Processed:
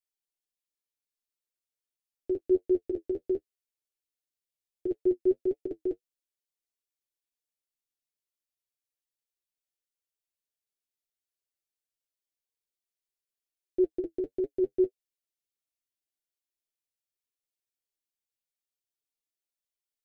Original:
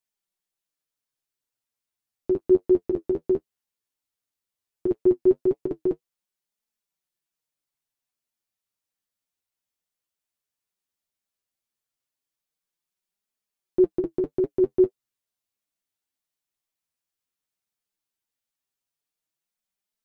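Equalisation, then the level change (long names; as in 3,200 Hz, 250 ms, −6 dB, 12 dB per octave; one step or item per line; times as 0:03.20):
phaser with its sweep stopped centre 430 Hz, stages 4
−6.0 dB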